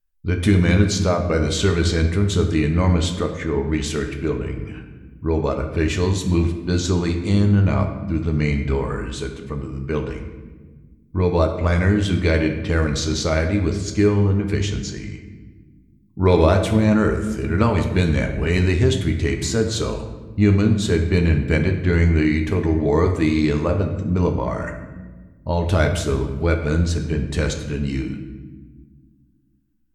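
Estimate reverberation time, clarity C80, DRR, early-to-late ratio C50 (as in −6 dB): 1.4 s, 9.5 dB, 4.5 dB, 7.5 dB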